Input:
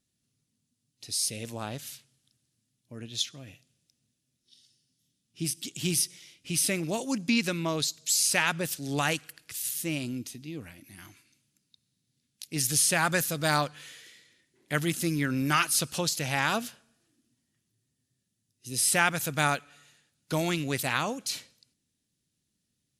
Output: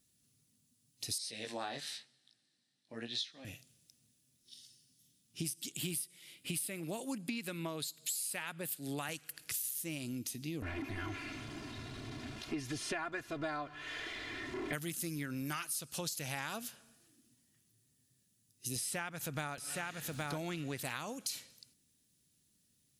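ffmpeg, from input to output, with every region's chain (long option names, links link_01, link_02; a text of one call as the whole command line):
ffmpeg -i in.wav -filter_complex "[0:a]asettb=1/sr,asplit=3[link_01][link_02][link_03];[link_01]atrim=end=1.184[link_04];[link_02]atrim=start=1.18:end=3.45,asetpts=PTS-STARTPTS,afade=type=in:duration=0.004:curve=qsin,afade=type=out:start_time=2.266:duration=0.004:curve=qsin,flanger=delay=16:depth=5.5:speed=1,highpass=250,equalizer=frequency=780:width_type=q:width=4:gain=6,equalizer=frequency=1800:width_type=q:width=4:gain=10,equalizer=frequency=4000:width_type=q:width=4:gain=8,equalizer=frequency=6800:width_type=q:width=4:gain=-10,lowpass=frequency=7800:width=0.5412,lowpass=frequency=7800:width=1.3066[link_05];[link_03]atrim=start=3.446[link_06];[link_04][link_05]acrossfade=duration=0.004:curve1=hsin:curve2=qsin[link_07];[link_07][link_06]acrossfade=duration=0.004:curve1=qsin:curve2=hsin,asettb=1/sr,asplit=3[link_08][link_09][link_10];[link_08]atrim=end=5.724[link_11];[link_09]atrim=start=5.72:end=9.09,asetpts=PTS-STARTPTS,afade=type=in:duration=0.004:curve=qsin,afade=type=out:start_time=3.366:duration=0.004:curve=qsin,highpass=130,equalizer=frequency=5900:width=3:gain=-13[link_12];[link_10]atrim=start=9.086[link_13];[link_11][link_12]acrossfade=duration=0.004:curve1=hsin:curve2=qsin[link_14];[link_14][link_13]acrossfade=duration=0.004:curve1=qsin:curve2=hsin,asettb=1/sr,asplit=3[link_15][link_16][link_17];[link_15]atrim=end=10.624[link_18];[link_16]atrim=start=10.62:end=14.73,asetpts=PTS-STARTPTS,afade=type=in:duration=0.004:curve=qsin,afade=type=out:start_time=4.106:duration=0.004:curve=qsin,aeval=exprs='val(0)+0.5*0.0133*sgn(val(0))':channel_layout=same,lowpass=2100,aecho=1:1:2.9:0.85,atrim=end_sample=181251[link_19];[link_17]atrim=start=14.726[link_20];[link_18][link_19]acrossfade=duration=0.004:curve1=hsin:curve2=qsin[link_21];[link_21][link_20]acrossfade=duration=0.004:curve1=qsin:curve2=hsin,asettb=1/sr,asplit=3[link_22][link_23][link_24];[link_22]atrim=end=18.764[link_25];[link_23]atrim=start=18.76:end=20.85,asetpts=PTS-STARTPTS,afade=type=in:duration=0.004:curve=qsin,afade=type=out:start_time=2.086:duration=0.004:curve=qsin,lowpass=frequency=2900:poles=1,acompressor=mode=upward:threshold=-29dB:ratio=2.5:attack=3.2:release=140:knee=2.83:detection=peak,aecho=1:1:818:0.398,atrim=end_sample=92169[link_26];[link_24]atrim=start=20.846[link_27];[link_25][link_26]acrossfade=duration=0.004:curve1=hsin:curve2=qsin[link_28];[link_28][link_27]acrossfade=duration=0.004:curve1=qsin:curve2=hsin,highshelf=frequency=9100:gain=11.5,acompressor=threshold=-38dB:ratio=12,volume=2dB" out.wav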